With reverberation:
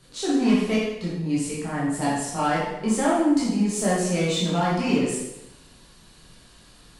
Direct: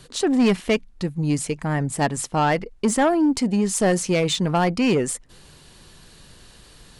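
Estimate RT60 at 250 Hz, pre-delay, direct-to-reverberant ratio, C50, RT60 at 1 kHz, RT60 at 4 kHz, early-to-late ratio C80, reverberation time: 0.90 s, 7 ms, -8.0 dB, 0.0 dB, 0.90 s, 0.85 s, 3.5 dB, 0.90 s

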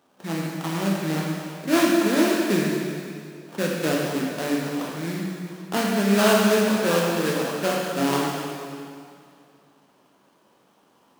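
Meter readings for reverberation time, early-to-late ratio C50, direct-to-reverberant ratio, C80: 2.4 s, -0.5 dB, -3.0 dB, 1.0 dB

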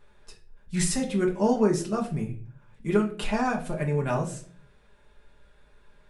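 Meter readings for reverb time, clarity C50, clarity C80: 0.45 s, 11.0 dB, 16.0 dB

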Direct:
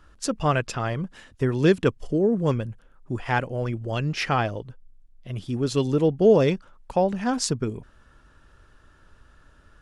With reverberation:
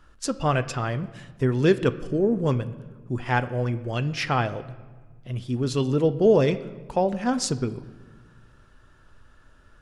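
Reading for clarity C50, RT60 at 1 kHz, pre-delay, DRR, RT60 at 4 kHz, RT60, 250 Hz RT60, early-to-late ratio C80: 15.5 dB, 1.3 s, 8 ms, 10.5 dB, 0.95 s, 1.4 s, 2.1 s, 17.0 dB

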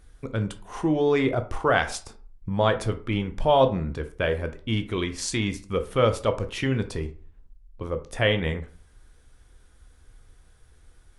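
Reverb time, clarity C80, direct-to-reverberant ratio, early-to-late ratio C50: 0.40 s, 19.0 dB, 8.0 dB, 13.5 dB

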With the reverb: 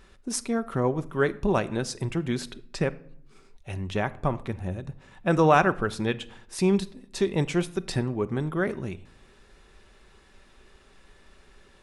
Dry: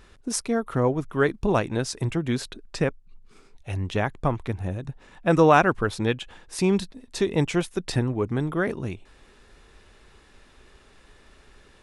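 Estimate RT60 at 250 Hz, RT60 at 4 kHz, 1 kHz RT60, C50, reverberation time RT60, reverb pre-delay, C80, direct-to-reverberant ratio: 0.95 s, 0.45 s, 0.60 s, 19.0 dB, 0.60 s, 5 ms, 22.0 dB, 11.5 dB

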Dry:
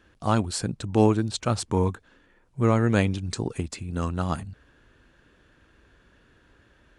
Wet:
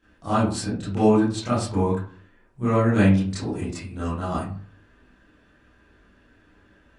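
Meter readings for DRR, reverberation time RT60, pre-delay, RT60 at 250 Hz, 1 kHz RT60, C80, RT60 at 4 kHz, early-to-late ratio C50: -12.5 dB, 0.45 s, 22 ms, 0.45 s, 0.45 s, 8.5 dB, 0.25 s, 1.5 dB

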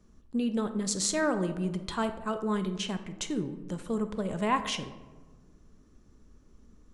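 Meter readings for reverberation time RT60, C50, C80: 1.4 s, 11.5 dB, 13.0 dB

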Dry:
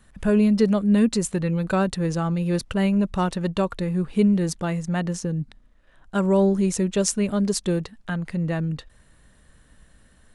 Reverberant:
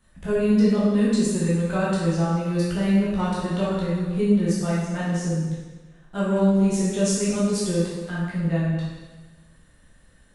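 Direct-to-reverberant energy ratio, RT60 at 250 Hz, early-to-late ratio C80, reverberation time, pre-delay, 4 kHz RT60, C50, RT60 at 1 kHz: -8.0 dB, 1.3 s, 1.5 dB, 1.3 s, 6 ms, 1.2 s, -1.5 dB, 1.3 s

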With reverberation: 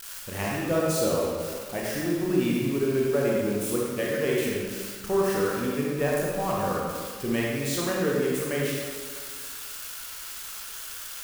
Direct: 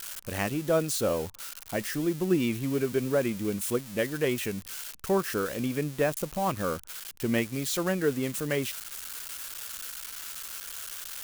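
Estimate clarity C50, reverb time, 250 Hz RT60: -2.0 dB, 1.8 s, 1.7 s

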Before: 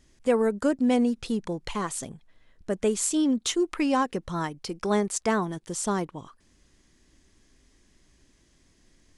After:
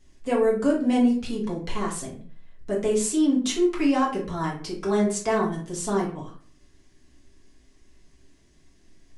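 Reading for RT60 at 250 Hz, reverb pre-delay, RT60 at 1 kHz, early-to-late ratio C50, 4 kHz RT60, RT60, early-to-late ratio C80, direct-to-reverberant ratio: 0.55 s, 4 ms, 0.40 s, 7.0 dB, 0.30 s, 0.45 s, 12.5 dB, -5.0 dB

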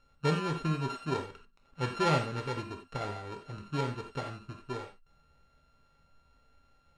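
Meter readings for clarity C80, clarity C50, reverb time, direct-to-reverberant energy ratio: 12.5 dB, 7.5 dB, not exponential, 2.5 dB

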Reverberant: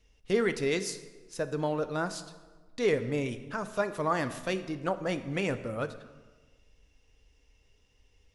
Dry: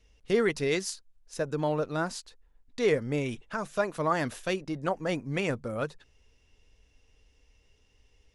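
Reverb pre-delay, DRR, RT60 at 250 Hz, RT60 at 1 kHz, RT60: 8 ms, 10.5 dB, 1.5 s, 1.3 s, 1.4 s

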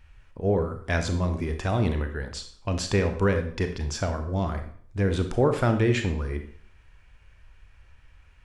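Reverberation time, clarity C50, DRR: 0.55 s, 9.0 dB, 6.5 dB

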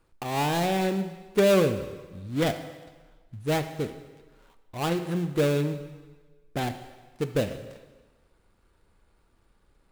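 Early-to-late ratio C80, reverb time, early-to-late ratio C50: 12.0 dB, 1.3 s, 10.5 dB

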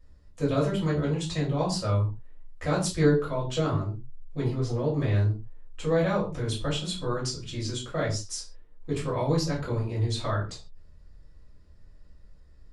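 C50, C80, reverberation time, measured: 8.0 dB, 13.0 dB, not exponential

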